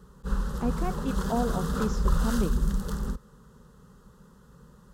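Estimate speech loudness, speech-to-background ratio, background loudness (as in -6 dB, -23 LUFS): -33.0 LUFS, -2.0 dB, -31.0 LUFS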